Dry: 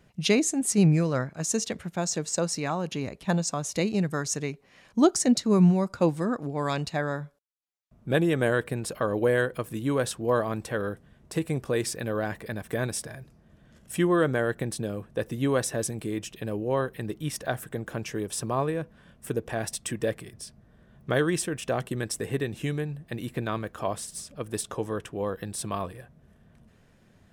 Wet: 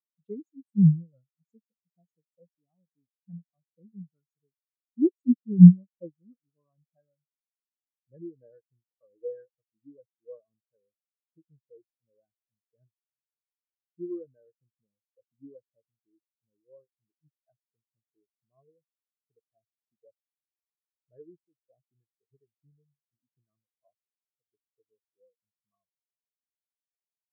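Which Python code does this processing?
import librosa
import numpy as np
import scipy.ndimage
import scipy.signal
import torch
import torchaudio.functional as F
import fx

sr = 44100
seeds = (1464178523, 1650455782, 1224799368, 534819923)

y = fx.spectral_expand(x, sr, expansion=4.0)
y = y * 10.0 ** (8.5 / 20.0)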